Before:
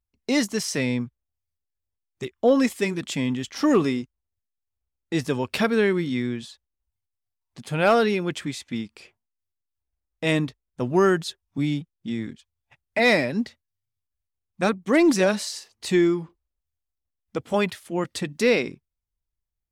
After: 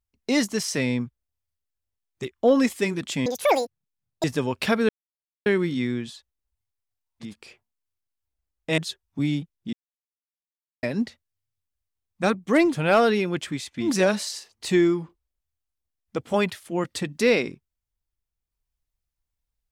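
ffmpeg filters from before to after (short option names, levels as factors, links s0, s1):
-filter_complex "[0:a]asplit=10[s0][s1][s2][s3][s4][s5][s6][s7][s8][s9];[s0]atrim=end=3.264[s10];[s1]atrim=start=3.26:end=5.16,asetpts=PTS-STARTPTS,asetrate=85554,aresample=44100[s11];[s2]atrim=start=5.156:end=5.81,asetpts=PTS-STARTPTS,afade=t=out:st=0.65:d=0.004:c=hsin,apad=pad_dur=0.57[s12];[s3]atrim=start=5.81:end=7.71,asetpts=PTS-STARTPTS,afade=t=in:d=0.004:c=hsin[s13];[s4]atrim=start=8.74:end=10.322[s14];[s5]atrim=start=11.168:end=12.12,asetpts=PTS-STARTPTS,afade=t=out:st=0.948:d=0.004:c=hsin[s15];[s6]atrim=start=12.12:end=13.22,asetpts=PTS-STARTPTS,volume=0[s16];[s7]atrim=start=13.22:end=15.16,asetpts=PTS-STARTPTS,afade=t=in:d=0.004:c=hsin[s17];[s8]atrim=start=7.55:end=8.9[s18];[s9]atrim=start=15[s19];[s10][s11]acrossfade=d=0.004:c1=hsin:c2=hsin[s20];[s12][s13]concat=n=2:v=0:a=1[s21];[s20][s21]acrossfade=d=0.004:c1=hsin:c2=hsin[s22];[s22][s14]acrossfade=d=0.16:c1=tri:c2=tri[s23];[s15][s16][s17]concat=n=3:v=0:a=1[s24];[s23][s24]acrossfade=d=0.004:c1=hsin:c2=hsin[s25];[s25][s18]acrossfade=d=0.16:c1=tri:c2=tri[s26];[s26][s19]acrossfade=d=0.16:c1=tri:c2=tri"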